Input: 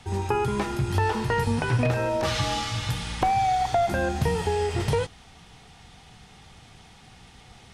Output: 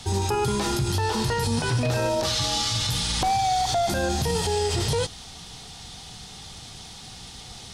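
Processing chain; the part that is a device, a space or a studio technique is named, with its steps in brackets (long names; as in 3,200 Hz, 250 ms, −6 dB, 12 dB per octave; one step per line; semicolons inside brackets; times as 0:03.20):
over-bright horn tweeter (high shelf with overshoot 3,100 Hz +8 dB, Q 1.5; brickwall limiter −21.5 dBFS, peak gain reduction 9.5 dB)
level +5.5 dB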